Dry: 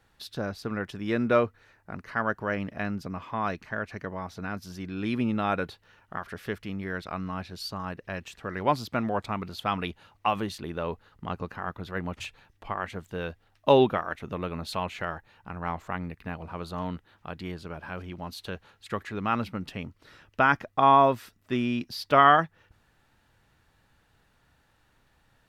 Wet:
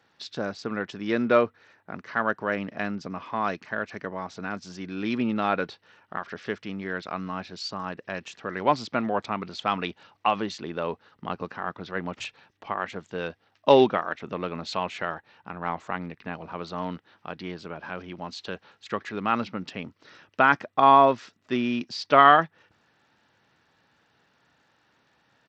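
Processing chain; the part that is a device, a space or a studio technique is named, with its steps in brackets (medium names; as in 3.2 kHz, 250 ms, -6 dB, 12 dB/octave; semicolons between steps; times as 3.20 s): Bluetooth headset (high-pass 180 Hz 12 dB/octave; resampled via 16 kHz; trim +2.5 dB; SBC 64 kbps 32 kHz)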